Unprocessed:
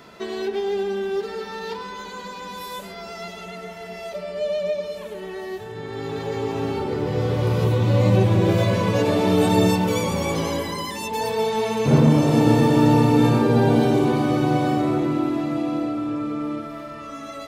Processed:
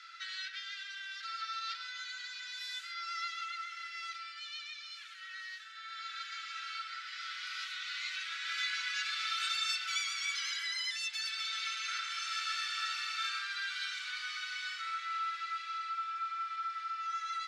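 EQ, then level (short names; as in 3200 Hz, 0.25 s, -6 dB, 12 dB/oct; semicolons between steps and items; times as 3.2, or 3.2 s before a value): rippled Chebyshev high-pass 1300 Hz, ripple 6 dB; LPF 5000 Hz 12 dB/oct; notch 1800 Hz, Q 9.6; +2.5 dB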